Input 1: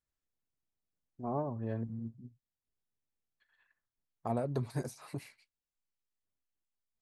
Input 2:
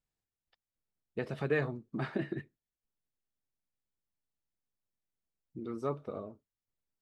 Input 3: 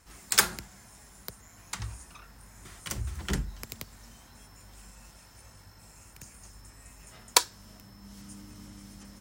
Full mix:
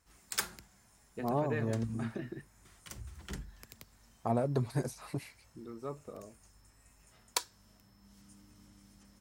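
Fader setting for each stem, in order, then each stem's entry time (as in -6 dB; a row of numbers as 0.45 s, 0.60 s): +3.0 dB, -6.5 dB, -12.0 dB; 0.00 s, 0.00 s, 0.00 s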